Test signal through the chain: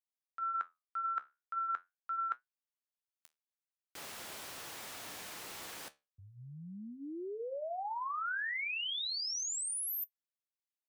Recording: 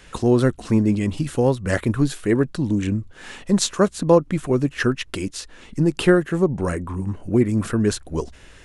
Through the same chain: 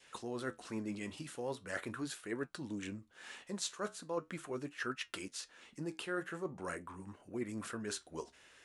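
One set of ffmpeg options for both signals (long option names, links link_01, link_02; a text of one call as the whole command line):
ffmpeg -i in.wav -af "highpass=frequency=700:poles=1,adynamicequalizer=threshold=0.0158:dfrequency=1400:dqfactor=3.2:tfrequency=1400:tqfactor=3.2:attack=5:release=100:ratio=0.375:range=3:mode=boostabove:tftype=bell,areverse,acompressor=threshold=-24dB:ratio=6,areverse,flanger=delay=7.6:depth=7.3:regen=-67:speed=0.41:shape=triangular,volume=-7dB" out.wav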